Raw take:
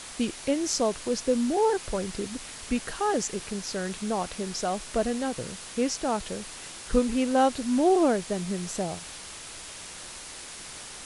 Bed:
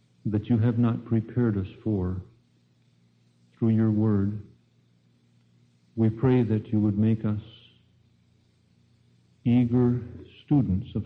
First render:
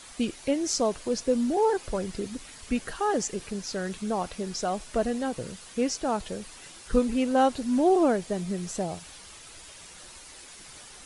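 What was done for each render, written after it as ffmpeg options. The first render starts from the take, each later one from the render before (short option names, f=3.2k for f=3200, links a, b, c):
-af "afftdn=nr=8:nf=-42"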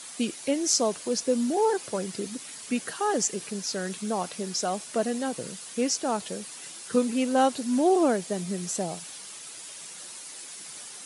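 -af "highpass=f=140:w=0.5412,highpass=f=140:w=1.3066,aemphasis=mode=production:type=cd"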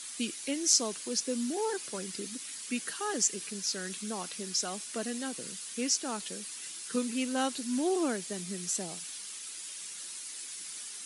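-af "highpass=250,equalizer=f=650:w=0.78:g=-12.5"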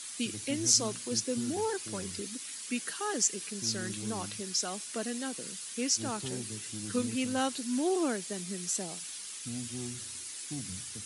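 -filter_complex "[1:a]volume=-19dB[a];[0:a][a]amix=inputs=2:normalize=0"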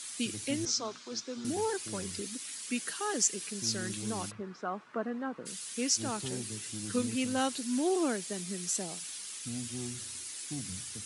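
-filter_complex "[0:a]asettb=1/sr,asplit=3[a][b][c];[a]atrim=end=0.654[d];[b]atrim=start=0.65:end=1.45,asetpts=PTS-STARTPTS,afade=t=in:d=0.004:c=qsin,afade=t=out:st=0.796:d=0.004:c=qsin,highpass=340,equalizer=f=340:t=q:w=4:g=-4,equalizer=f=520:t=q:w=4:g=-6,equalizer=f=1.3k:t=q:w=4:g=4,equalizer=f=1.9k:t=q:w=4:g=-5,equalizer=f=2.8k:t=q:w=4:g=-7,equalizer=f=4.5k:t=q:w=4:g=-4,lowpass=f=5.3k:w=0.5412,lowpass=f=5.3k:w=1.3066[e];[c]atrim=start=1.446[f];[d][e]acrossfade=d=0.004:c1=hsin:c2=qsin[g];[g][f]acrossfade=d=0.004:c1=qsin:c2=hsin,asplit=3[h][i][j];[h]afade=t=out:st=4.3:d=0.02[k];[i]lowpass=f=1.2k:t=q:w=2.1,afade=t=in:st=4.3:d=0.02,afade=t=out:st=5.45:d=0.02[l];[j]afade=t=in:st=5.45:d=0.02[m];[k][l][m]amix=inputs=3:normalize=0"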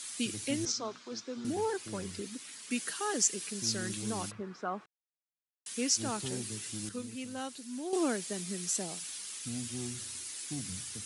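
-filter_complex "[0:a]asettb=1/sr,asplit=3[a][b][c];[a]atrim=end=0.724[d];[b]atrim=start=0.72:end=2.71,asetpts=PTS-STARTPTS,afade=t=in:d=0.004:c=qsin,afade=t=out:st=1.986:d=0.004:c=qsin,highshelf=f=3.8k:g=-7.5[e];[c]atrim=start=2.706[f];[d][e]acrossfade=d=0.004:c1=hsin:c2=qsin[g];[g][f]acrossfade=d=0.004:c1=qsin:c2=hsin,asplit=5[h][i][j][k][l];[h]atrim=end=4.86,asetpts=PTS-STARTPTS,afade=t=out:st=4.856:d=0.004:c=hsin[m];[i]atrim=start=4.86:end=5.66,asetpts=PTS-STARTPTS,volume=0[n];[j]atrim=start=5.66:end=6.892,asetpts=PTS-STARTPTS,afade=t=in:d=0.004:c=hsin[o];[k]atrim=start=6.888:end=7.932,asetpts=PTS-STARTPTS,volume=-9dB[p];[l]atrim=start=7.928[q];[m][n][o]concat=n=3:v=0:a=1[r];[r][p]acrossfade=d=0.004:c1=hsin:c2=hsin[s];[s][q]acrossfade=d=0.004:c1=hsin:c2=hsin"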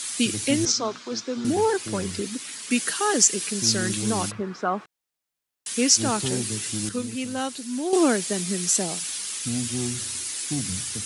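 -af "volume=11dB,alimiter=limit=-1dB:level=0:latency=1"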